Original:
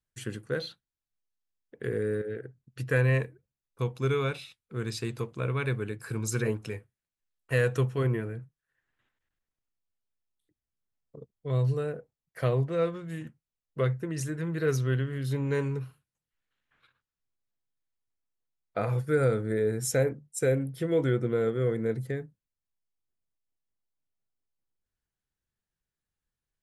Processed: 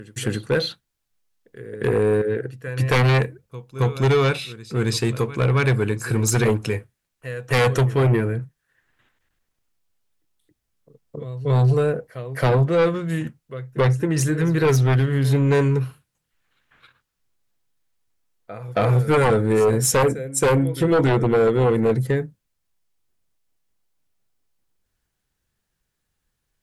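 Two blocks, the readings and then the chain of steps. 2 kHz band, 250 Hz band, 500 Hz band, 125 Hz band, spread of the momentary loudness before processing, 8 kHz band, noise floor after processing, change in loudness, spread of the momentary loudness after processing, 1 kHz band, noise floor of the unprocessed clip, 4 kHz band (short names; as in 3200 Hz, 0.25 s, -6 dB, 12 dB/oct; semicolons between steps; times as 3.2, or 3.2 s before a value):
+9.0 dB, +10.5 dB, +9.0 dB, +10.0 dB, 14 LU, +11.5 dB, -78 dBFS, +9.5 dB, 12 LU, +14.5 dB, under -85 dBFS, +13.0 dB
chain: pre-echo 0.272 s -19 dB; sine folder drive 9 dB, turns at -13 dBFS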